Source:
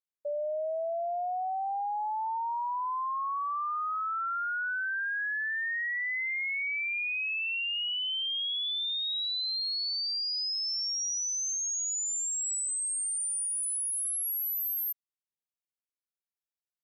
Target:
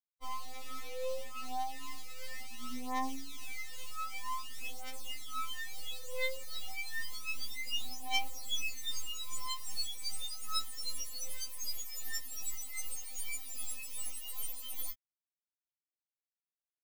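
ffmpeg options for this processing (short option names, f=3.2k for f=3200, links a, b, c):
-filter_complex "[0:a]afftfilt=real='re*pow(10,9/40*sin(2*PI*(0.88*log(max(b,1)*sr/1024/100)/log(2)-(-2.3)*(pts-256)/sr)))':imag='im*pow(10,9/40*sin(2*PI*(0.88*log(max(b,1)*sr/1024/100)/log(2)-(-2.3)*(pts-256)/sr)))':win_size=1024:overlap=0.75,highshelf=f=3.3k:g=-11,bandreject=f=50:t=h:w=6,bandreject=f=100:t=h:w=6,bandreject=f=150:t=h:w=6,bandreject=f=200:t=h:w=6,bandreject=f=250:t=h:w=6,bandreject=f=300:t=h:w=6,bandreject=f=350:t=h:w=6,bandreject=f=400:t=h:w=6,bandreject=f=450:t=h:w=6,bandreject=f=500:t=h:w=6,acrossover=split=3500[a][b];[a]acompressor=threshold=-38dB:ratio=16[c];[c][b]amix=inputs=2:normalize=0,asplit=4[d][e][f][g];[e]asetrate=33038,aresample=44100,atempo=1.33484,volume=-2dB[h];[f]asetrate=55563,aresample=44100,atempo=0.793701,volume=-16dB[i];[g]asetrate=58866,aresample=44100,atempo=0.749154,volume=-14dB[j];[d][h][i][j]amix=inputs=4:normalize=0,acrusher=bits=4:dc=4:mix=0:aa=0.000001,atempo=1,asuperstop=centerf=1600:order=4:qfactor=4.6,afftfilt=real='re*3.46*eq(mod(b,12),0)':imag='im*3.46*eq(mod(b,12),0)':win_size=2048:overlap=0.75,volume=1.5dB"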